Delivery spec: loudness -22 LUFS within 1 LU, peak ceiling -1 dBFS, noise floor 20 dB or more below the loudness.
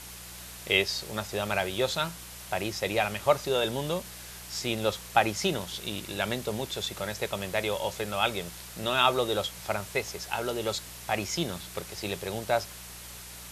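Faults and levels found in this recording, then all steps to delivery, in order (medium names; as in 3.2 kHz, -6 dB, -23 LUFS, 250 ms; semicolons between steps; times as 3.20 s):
hum 60 Hz; highest harmonic 180 Hz; hum level -48 dBFS; noise floor -44 dBFS; noise floor target -50 dBFS; loudness -29.5 LUFS; peak level -5.5 dBFS; loudness target -22.0 LUFS
-> de-hum 60 Hz, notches 3; noise print and reduce 6 dB; trim +7.5 dB; peak limiter -1 dBFS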